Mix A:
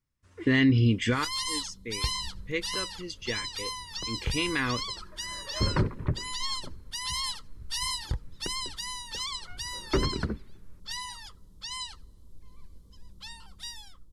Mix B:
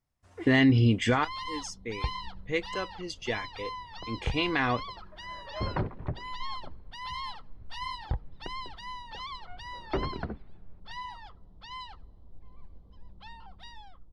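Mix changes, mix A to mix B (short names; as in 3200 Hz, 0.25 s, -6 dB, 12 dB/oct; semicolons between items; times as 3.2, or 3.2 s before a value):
first sound: add air absorption 360 m; second sound -6.0 dB; master: add bell 730 Hz +15 dB 0.5 oct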